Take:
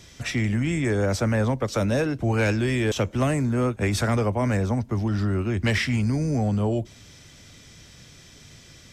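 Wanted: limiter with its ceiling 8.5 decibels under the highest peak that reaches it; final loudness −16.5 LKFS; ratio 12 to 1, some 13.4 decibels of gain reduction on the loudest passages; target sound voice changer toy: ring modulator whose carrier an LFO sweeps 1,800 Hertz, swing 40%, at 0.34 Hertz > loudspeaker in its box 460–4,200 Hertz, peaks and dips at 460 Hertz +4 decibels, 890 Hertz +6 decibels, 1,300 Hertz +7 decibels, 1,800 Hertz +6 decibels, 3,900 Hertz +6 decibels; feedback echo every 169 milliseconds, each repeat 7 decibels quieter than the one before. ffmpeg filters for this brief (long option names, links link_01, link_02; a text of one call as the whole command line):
ffmpeg -i in.wav -af "acompressor=threshold=-33dB:ratio=12,alimiter=level_in=9dB:limit=-24dB:level=0:latency=1,volume=-9dB,aecho=1:1:169|338|507|676|845:0.447|0.201|0.0905|0.0407|0.0183,aeval=exprs='val(0)*sin(2*PI*1800*n/s+1800*0.4/0.34*sin(2*PI*0.34*n/s))':channel_layout=same,highpass=460,equalizer=frequency=460:width_type=q:width=4:gain=4,equalizer=frequency=890:width_type=q:width=4:gain=6,equalizer=frequency=1300:width_type=q:width=4:gain=7,equalizer=frequency=1800:width_type=q:width=4:gain=6,equalizer=frequency=3900:width_type=q:width=4:gain=6,lowpass=frequency=4200:width=0.5412,lowpass=frequency=4200:width=1.3066,volume=20dB" out.wav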